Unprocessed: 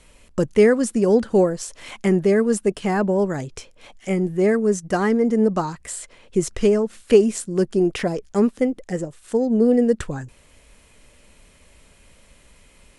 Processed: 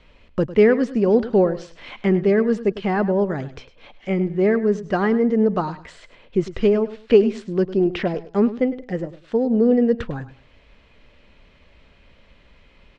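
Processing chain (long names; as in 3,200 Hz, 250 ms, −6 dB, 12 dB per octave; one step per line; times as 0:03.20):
low-pass filter 4,100 Hz 24 dB per octave
repeating echo 103 ms, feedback 23%, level −15 dB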